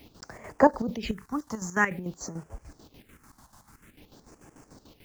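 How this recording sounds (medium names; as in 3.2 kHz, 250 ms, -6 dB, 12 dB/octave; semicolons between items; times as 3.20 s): a quantiser's noise floor 10-bit, dither none; phasing stages 4, 0.5 Hz, lowest notch 400–3800 Hz; chopped level 6.8 Hz, depth 65%, duty 55%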